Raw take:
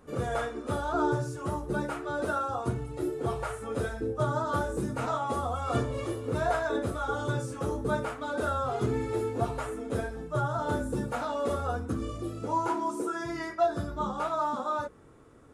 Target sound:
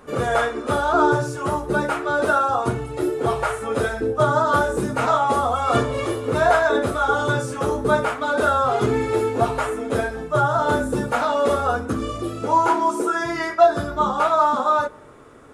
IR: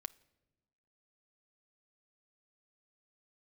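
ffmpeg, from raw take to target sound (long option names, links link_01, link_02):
-filter_complex "[0:a]bass=frequency=250:gain=-1,treble=frequency=4000:gain=-4,asplit=2[link_01][link_02];[1:a]atrim=start_sample=2205,lowshelf=frequency=310:gain=-12[link_03];[link_02][link_03]afir=irnorm=-1:irlink=0,volume=15dB[link_04];[link_01][link_04]amix=inputs=2:normalize=0"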